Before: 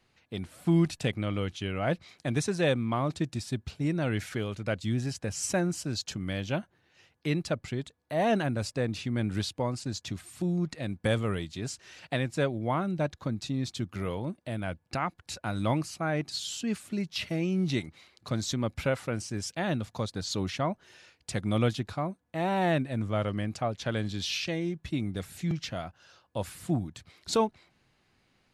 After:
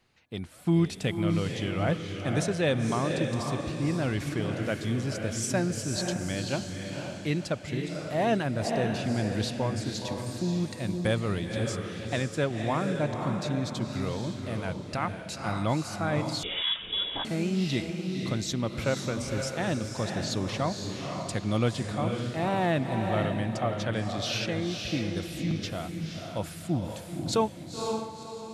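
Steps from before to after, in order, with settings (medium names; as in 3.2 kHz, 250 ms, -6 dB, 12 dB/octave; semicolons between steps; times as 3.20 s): echo that smears into a reverb 514 ms, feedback 41%, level -4 dB; 16.43–17.25 s: frequency inversion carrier 3.6 kHz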